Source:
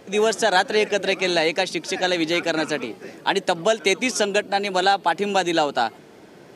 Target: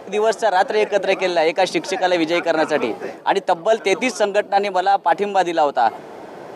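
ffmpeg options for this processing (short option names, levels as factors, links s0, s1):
-af "equalizer=f=770:w=0.68:g=13,areverse,acompressor=threshold=0.141:ratio=6,areverse,volume=1.41"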